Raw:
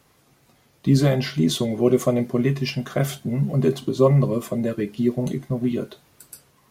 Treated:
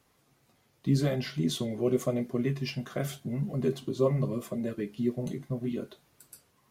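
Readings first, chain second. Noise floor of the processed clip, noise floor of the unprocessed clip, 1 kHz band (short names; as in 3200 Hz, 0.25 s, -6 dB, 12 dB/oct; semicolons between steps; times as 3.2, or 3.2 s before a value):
-69 dBFS, -60 dBFS, -10.5 dB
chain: dynamic EQ 900 Hz, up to -4 dB, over -38 dBFS, Q 2.5; flange 0.85 Hz, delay 2.5 ms, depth 8.9 ms, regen -64%; gain -4.5 dB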